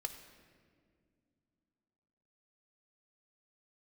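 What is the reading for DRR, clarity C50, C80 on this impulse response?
6.0 dB, 9.0 dB, 10.0 dB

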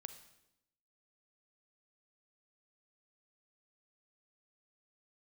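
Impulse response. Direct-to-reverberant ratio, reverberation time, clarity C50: 9.5 dB, 0.85 s, 10.5 dB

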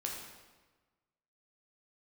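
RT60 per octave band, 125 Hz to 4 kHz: 1.5, 1.4, 1.3, 1.3, 1.1, 1.0 seconds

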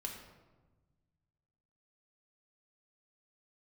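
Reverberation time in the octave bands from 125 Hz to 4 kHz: 2.3, 1.8, 1.3, 1.2, 0.90, 0.70 seconds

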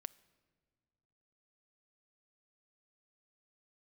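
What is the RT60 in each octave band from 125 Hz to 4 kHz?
2.6, 2.2, 2.0, 1.6, 1.3, 1.1 seconds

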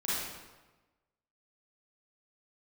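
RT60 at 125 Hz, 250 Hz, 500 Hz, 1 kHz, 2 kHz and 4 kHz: 1.3, 1.2, 1.2, 1.2, 1.0, 0.90 seconds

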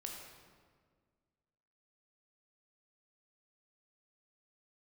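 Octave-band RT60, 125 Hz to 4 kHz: 2.1, 2.1, 1.9, 1.6, 1.4, 1.1 seconds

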